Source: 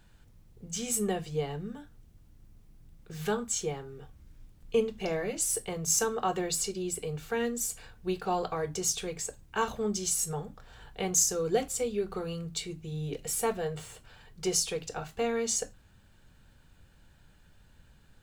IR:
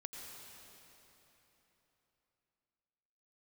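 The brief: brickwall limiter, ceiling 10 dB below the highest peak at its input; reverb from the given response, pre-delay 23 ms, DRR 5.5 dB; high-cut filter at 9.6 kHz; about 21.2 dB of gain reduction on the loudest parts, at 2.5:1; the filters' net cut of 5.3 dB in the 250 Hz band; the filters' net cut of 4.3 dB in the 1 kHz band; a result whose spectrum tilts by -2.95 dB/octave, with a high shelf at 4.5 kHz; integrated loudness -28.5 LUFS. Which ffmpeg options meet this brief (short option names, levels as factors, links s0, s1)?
-filter_complex "[0:a]lowpass=9600,equalizer=f=250:t=o:g=-8,equalizer=f=1000:t=o:g=-6,highshelf=f=4500:g=9,acompressor=threshold=0.00316:ratio=2.5,alimiter=level_in=5.01:limit=0.0631:level=0:latency=1,volume=0.2,asplit=2[s0][s1];[1:a]atrim=start_sample=2205,adelay=23[s2];[s1][s2]afir=irnorm=-1:irlink=0,volume=0.708[s3];[s0][s3]amix=inputs=2:normalize=0,volume=9.44"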